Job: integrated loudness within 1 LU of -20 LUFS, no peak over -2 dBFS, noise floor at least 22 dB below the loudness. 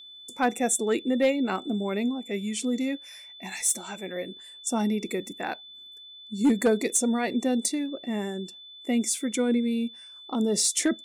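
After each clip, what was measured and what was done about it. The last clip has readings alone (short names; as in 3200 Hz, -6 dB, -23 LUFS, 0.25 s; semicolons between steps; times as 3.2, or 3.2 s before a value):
clipped 0.3%; flat tops at -15.5 dBFS; steady tone 3500 Hz; tone level -44 dBFS; loudness -27.0 LUFS; peak -15.5 dBFS; loudness target -20.0 LUFS
-> clip repair -15.5 dBFS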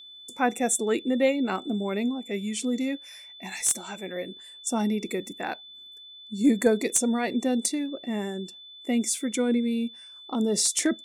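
clipped 0.0%; steady tone 3500 Hz; tone level -44 dBFS
-> notch 3500 Hz, Q 30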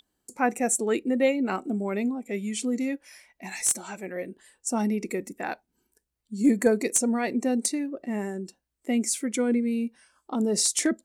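steady tone none; loudness -27.0 LUFS; peak -6.5 dBFS; loudness target -20.0 LUFS
-> gain +7 dB; limiter -2 dBFS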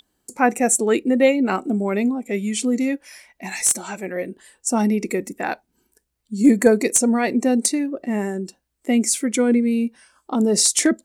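loudness -20.0 LUFS; peak -2.0 dBFS; noise floor -73 dBFS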